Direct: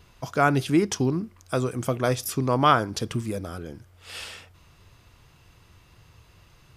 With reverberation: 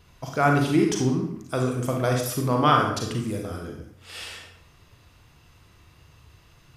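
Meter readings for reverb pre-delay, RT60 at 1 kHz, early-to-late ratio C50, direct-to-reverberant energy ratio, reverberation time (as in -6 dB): 34 ms, 0.65 s, 3.5 dB, 1.0 dB, 0.65 s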